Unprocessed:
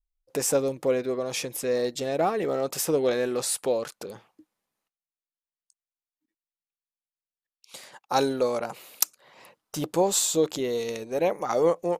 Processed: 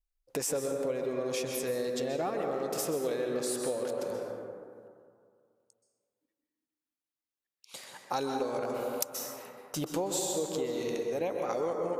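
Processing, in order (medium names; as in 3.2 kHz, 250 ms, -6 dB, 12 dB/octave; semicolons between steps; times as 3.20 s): plate-style reverb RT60 2.2 s, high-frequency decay 0.3×, pre-delay 115 ms, DRR 2.5 dB; compression 4:1, threshold -28 dBFS, peak gain reduction 10.5 dB; trim -2 dB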